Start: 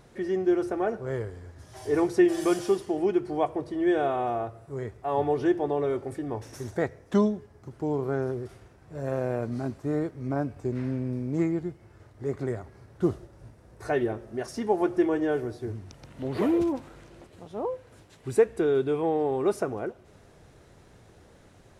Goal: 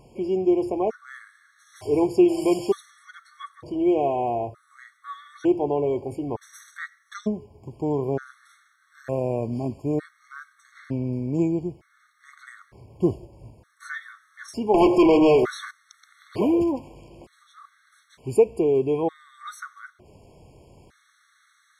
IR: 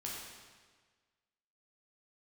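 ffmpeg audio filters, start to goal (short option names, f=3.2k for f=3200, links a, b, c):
-filter_complex "[0:a]asettb=1/sr,asplit=3[a][b][c];[a]atrim=end=14.744[d];[b]atrim=start=14.74:end=15.71,asetpts=PTS-STARTPTS,afade=t=in:d=0.004:c=qsin,afade=t=out:st=0.966:d=0.004:c=qsin,asplit=2[e][f];[f]highpass=f=720:p=1,volume=27dB,asoftclip=type=tanh:threshold=-12dB[g];[e][g]amix=inputs=2:normalize=0,lowpass=f=4k:p=1,volume=-6dB[h];[c]atrim=start=15.706[i];[d][h]acrossfade=d=0.004:c1=hsin:c2=qsin[j];[j][i]acrossfade=d=0.004:c1=qsin:c2=hsin,afftfilt=real='re*gt(sin(2*PI*0.55*pts/sr)*(1-2*mod(floor(b*sr/1024/1100),2)),0)':imag='im*gt(sin(2*PI*0.55*pts/sr)*(1-2*mod(floor(b*sr/1024/1100),2)),0)':win_size=1024:overlap=0.75,volume=3.5dB"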